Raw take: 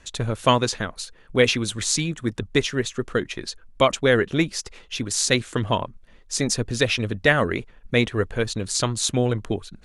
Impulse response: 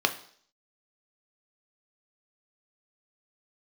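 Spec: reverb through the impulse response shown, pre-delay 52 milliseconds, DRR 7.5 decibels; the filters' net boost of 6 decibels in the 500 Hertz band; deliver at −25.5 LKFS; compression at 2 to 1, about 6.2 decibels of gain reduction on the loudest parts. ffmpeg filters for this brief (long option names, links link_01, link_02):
-filter_complex "[0:a]equalizer=frequency=500:width_type=o:gain=7,acompressor=threshold=-19dB:ratio=2,asplit=2[link_01][link_02];[1:a]atrim=start_sample=2205,adelay=52[link_03];[link_02][link_03]afir=irnorm=-1:irlink=0,volume=-19.5dB[link_04];[link_01][link_04]amix=inputs=2:normalize=0,volume=-2dB"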